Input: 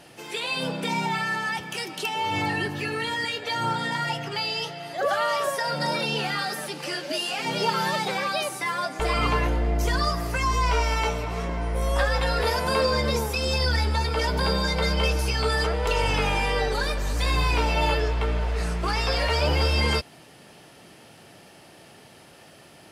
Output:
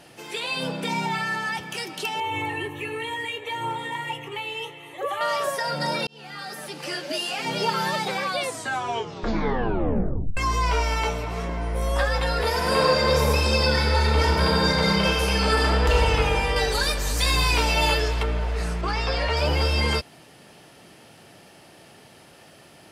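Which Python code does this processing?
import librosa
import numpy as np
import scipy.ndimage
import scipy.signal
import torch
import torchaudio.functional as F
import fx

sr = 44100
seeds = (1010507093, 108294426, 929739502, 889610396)

y = fx.fixed_phaser(x, sr, hz=1000.0, stages=8, at=(2.2, 5.21))
y = fx.reverb_throw(y, sr, start_s=12.49, length_s=3.47, rt60_s=2.8, drr_db=-2.5)
y = fx.high_shelf(y, sr, hz=3100.0, db=11.0, at=(16.56, 18.23))
y = fx.air_absorb(y, sr, metres=63.0, at=(18.81, 19.37))
y = fx.edit(y, sr, fx.fade_in_span(start_s=6.07, length_s=0.85),
    fx.tape_stop(start_s=8.22, length_s=2.15), tone=tone)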